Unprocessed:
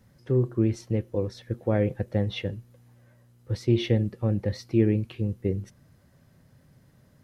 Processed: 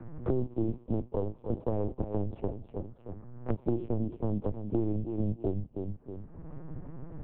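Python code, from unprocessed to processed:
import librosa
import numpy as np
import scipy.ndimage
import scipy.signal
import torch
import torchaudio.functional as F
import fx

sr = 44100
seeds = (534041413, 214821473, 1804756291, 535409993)

p1 = fx.lower_of_two(x, sr, delay_ms=0.31)
p2 = scipy.signal.sosfilt(scipy.signal.butter(4, 1400.0, 'lowpass', fs=sr, output='sos'), p1)
p3 = fx.leveller(p2, sr, passes=1)
p4 = fx.env_flanger(p3, sr, rest_ms=7.6, full_db=-33.0)
p5 = p4 + fx.echo_feedback(p4, sr, ms=314, feedback_pct=17, wet_db=-11.5, dry=0)
p6 = fx.lpc_vocoder(p5, sr, seeds[0], excitation='pitch_kept', order=8)
p7 = fx.band_squash(p6, sr, depth_pct=100)
y = F.gain(torch.from_numpy(p7), -7.5).numpy()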